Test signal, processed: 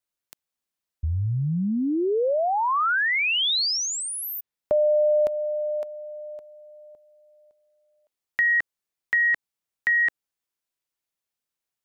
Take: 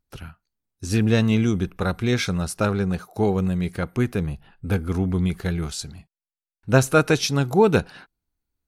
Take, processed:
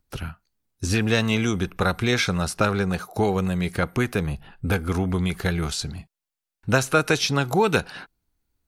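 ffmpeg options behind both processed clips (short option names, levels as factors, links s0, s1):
-filter_complex "[0:a]acrossover=split=530|1200|4800[s0][s1][s2][s3];[s0]acompressor=threshold=0.0355:ratio=4[s4];[s1]acompressor=threshold=0.0282:ratio=4[s5];[s2]acompressor=threshold=0.0398:ratio=4[s6];[s3]acompressor=threshold=0.0112:ratio=4[s7];[s4][s5][s6][s7]amix=inputs=4:normalize=0,volume=2"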